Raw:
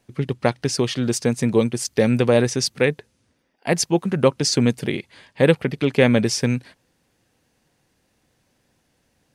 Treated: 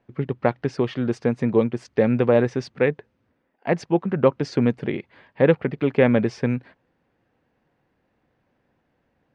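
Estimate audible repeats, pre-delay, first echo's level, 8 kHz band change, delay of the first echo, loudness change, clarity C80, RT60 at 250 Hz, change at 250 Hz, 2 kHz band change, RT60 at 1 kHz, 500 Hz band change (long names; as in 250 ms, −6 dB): no echo audible, no reverb audible, no echo audible, below −20 dB, no echo audible, −2.0 dB, no reverb audible, no reverb audible, −1.5 dB, −3.5 dB, no reverb audible, −0.5 dB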